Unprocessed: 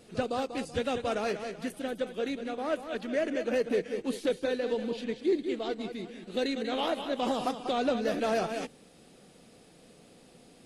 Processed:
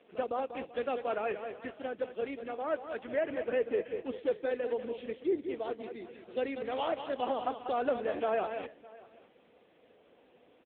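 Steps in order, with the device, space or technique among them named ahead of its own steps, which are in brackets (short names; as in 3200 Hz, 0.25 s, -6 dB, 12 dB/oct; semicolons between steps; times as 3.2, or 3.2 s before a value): satellite phone (BPF 370–3100 Hz; echo 0.608 s -21.5 dB; AMR-NB 6.7 kbps 8000 Hz)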